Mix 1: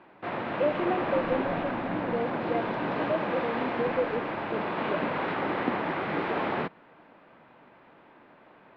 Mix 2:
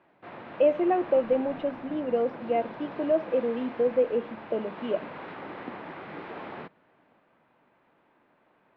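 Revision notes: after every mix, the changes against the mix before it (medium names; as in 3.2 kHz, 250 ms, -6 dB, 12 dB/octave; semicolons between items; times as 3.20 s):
speech +5.5 dB; background -10.5 dB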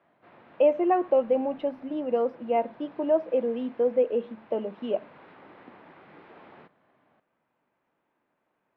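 speech: add peaking EQ 980 Hz +12 dB 0.42 oct; background -11.0 dB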